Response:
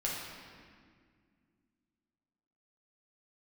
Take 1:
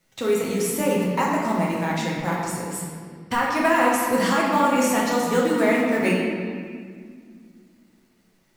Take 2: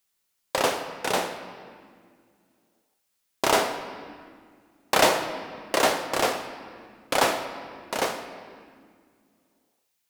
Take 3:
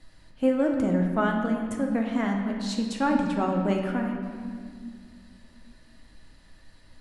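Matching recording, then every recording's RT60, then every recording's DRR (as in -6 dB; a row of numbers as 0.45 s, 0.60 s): 1; 1.9 s, 2.1 s, 2.0 s; -5.0 dB, 6.5 dB, 1.0 dB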